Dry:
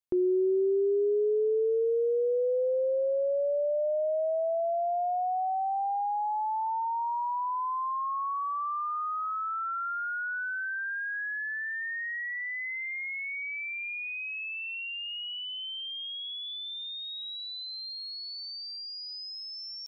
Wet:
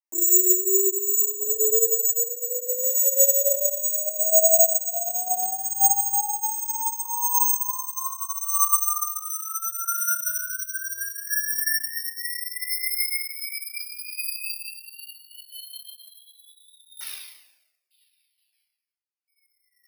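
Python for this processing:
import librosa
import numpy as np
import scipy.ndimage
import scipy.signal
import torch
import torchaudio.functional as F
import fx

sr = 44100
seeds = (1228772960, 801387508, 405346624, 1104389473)

y = fx.sine_speech(x, sr, at=(16.96, 19.28))
y = scipy.signal.sosfilt(scipy.signal.ellip(3, 1.0, 80, [310.0, 2300.0], 'bandpass', fs=sr, output='sos'), y)
y = fx.quant_float(y, sr, bits=8)
y = fx.chopper(y, sr, hz=0.71, depth_pct=60, duty_pct=30)
y = fx.room_shoebox(y, sr, seeds[0], volume_m3=540.0, walls='mixed', distance_m=7.4)
y = (np.kron(y[::6], np.eye(6)[0]) * 6)[:len(y)]
y = fx.comb_cascade(y, sr, direction='falling', hz=0.98)
y = F.gain(torch.from_numpy(y), -7.5).numpy()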